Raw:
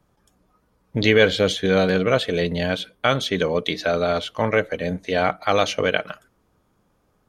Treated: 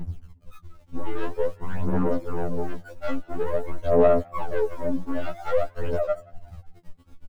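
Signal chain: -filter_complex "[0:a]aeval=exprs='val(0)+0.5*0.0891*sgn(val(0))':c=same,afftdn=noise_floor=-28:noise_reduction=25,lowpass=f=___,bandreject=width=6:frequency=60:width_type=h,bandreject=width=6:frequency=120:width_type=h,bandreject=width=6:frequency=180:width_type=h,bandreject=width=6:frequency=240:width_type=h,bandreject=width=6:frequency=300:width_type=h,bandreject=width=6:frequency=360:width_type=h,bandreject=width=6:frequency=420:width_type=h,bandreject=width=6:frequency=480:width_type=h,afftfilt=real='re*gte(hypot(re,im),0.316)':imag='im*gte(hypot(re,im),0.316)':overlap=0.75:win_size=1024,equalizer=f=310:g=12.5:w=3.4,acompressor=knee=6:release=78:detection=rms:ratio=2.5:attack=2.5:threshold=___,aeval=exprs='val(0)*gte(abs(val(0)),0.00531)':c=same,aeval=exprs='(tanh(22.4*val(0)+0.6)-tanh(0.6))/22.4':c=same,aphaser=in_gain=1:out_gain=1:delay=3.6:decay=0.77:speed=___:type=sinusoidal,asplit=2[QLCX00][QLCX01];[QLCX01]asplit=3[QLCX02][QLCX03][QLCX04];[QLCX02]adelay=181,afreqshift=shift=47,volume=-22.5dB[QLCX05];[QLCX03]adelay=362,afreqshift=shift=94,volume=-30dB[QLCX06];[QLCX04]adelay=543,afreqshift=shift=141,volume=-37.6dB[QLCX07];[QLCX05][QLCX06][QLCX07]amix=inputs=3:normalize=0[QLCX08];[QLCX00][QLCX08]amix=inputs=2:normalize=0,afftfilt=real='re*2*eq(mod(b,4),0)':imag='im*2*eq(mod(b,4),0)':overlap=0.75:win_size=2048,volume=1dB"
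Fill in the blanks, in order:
1600, -25dB, 0.49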